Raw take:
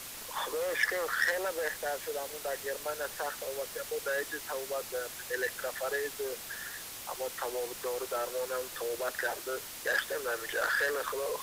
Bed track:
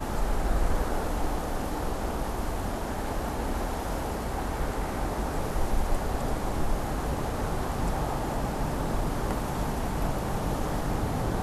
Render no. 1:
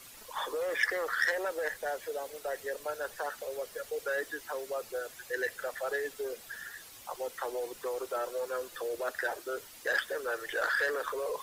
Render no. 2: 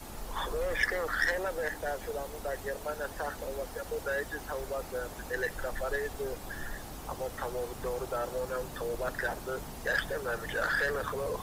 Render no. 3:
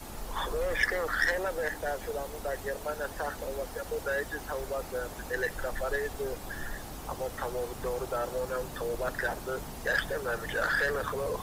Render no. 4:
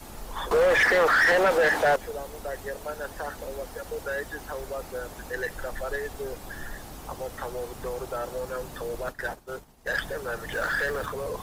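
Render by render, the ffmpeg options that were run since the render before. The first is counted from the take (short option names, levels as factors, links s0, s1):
-af "afftdn=nr=10:nf=-44"
-filter_complex "[1:a]volume=0.2[s0];[0:a][s0]amix=inputs=2:normalize=0"
-af "volume=1.19"
-filter_complex "[0:a]asettb=1/sr,asplit=3[s0][s1][s2];[s0]atrim=end=0.514[s3];[s1]atrim=start=0.51:end=1.96,asetpts=PTS-STARTPTS,afade=t=in:d=0.004:c=qsin,afade=t=out:st=1.446:d=0.004:c=qsin,asplit=2[s4][s5];[s5]highpass=f=720:p=1,volume=20,asoftclip=type=tanh:threshold=0.282[s6];[s4][s6]amix=inputs=2:normalize=0,lowpass=f=2200:p=1,volume=0.501[s7];[s2]atrim=start=1.956[s8];[s3][s7]acrossfade=d=0.004:c1=hsin:c2=qsin[s9];[s9][s8]acrossfade=d=0.004:c1=qsin:c2=hsin,asplit=3[s10][s11][s12];[s10]afade=t=out:st=9.01:d=0.02[s13];[s11]agate=range=0.0224:threshold=0.0282:ratio=3:release=100:detection=peak,afade=t=in:st=9.01:d=0.02,afade=t=out:st=9.95:d=0.02[s14];[s12]afade=t=in:st=9.95:d=0.02[s15];[s13][s14][s15]amix=inputs=3:normalize=0,asettb=1/sr,asplit=3[s16][s17][s18];[s16]atrim=end=10.524[s19];[s17]atrim=start=10.52:end=11.06,asetpts=PTS-STARTPTS,afade=t=in:d=0.004:c=qsin,afade=t=out:st=0.536:d=0.004:c=qsin,aeval=exprs='val(0)+0.5*0.0106*sgn(val(0))':c=same[s20];[s18]atrim=start=11.056[s21];[s19][s20]acrossfade=d=0.004:c1=hsin:c2=qsin[s22];[s22][s21]acrossfade=d=0.004:c1=qsin:c2=hsin"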